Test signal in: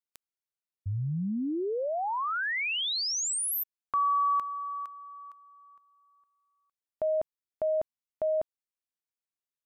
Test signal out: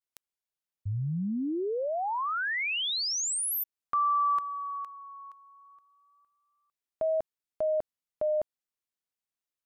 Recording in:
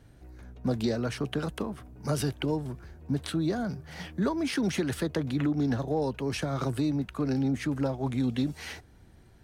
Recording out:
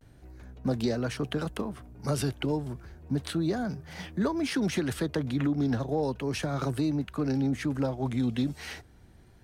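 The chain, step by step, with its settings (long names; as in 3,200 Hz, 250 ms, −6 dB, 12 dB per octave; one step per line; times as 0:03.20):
pitch vibrato 0.33 Hz 42 cents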